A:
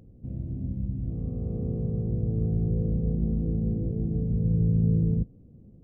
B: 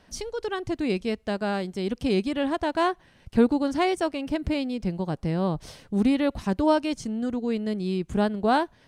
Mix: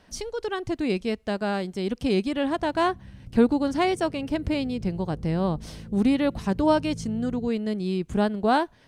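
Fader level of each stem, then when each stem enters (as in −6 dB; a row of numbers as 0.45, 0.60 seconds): −14.5, +0.5 decibels; 2.25, 0.00 seconds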